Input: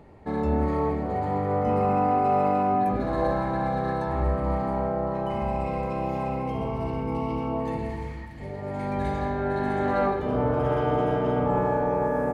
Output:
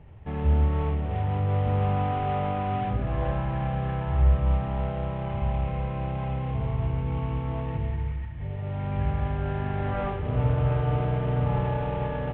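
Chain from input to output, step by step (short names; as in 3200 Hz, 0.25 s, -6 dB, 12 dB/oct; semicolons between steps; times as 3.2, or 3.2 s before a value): CVSD 16 kbps; resonant low shelf 170 Hz +11.5 dB, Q 1.5; gain -5.5 dB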